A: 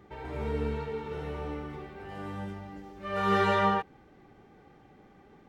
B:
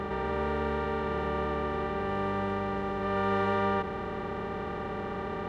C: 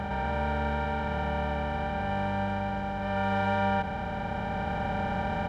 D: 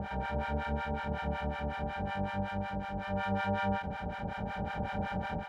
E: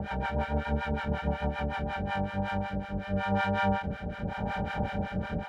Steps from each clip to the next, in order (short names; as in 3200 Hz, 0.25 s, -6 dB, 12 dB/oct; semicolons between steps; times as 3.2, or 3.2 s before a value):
per-bin compression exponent 0.2; high shelf 2600 Hz -11.5 dB; gain -5 dB
comb 1.3 ms, depth 84%; vocal rider 2 s
harmonic tremolo 5.4 Hz, depth 100%, crossover 780 Hz; ending taper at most 110 dB/s
rotary speaker horn 6.7 Hz, later 0.9 Hz, at 1.67; gain +6 dB